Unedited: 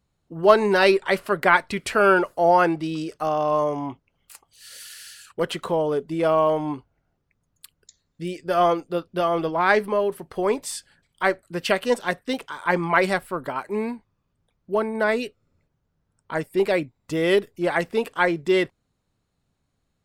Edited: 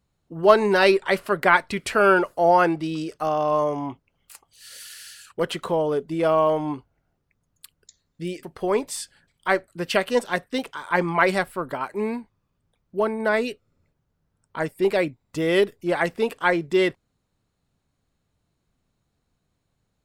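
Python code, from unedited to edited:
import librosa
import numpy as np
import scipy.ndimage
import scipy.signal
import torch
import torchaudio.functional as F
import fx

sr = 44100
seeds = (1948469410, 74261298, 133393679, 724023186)

y = fx.edit(x, sr, fx.cut(start_s=8.43, length_s=1.75), tone=tone)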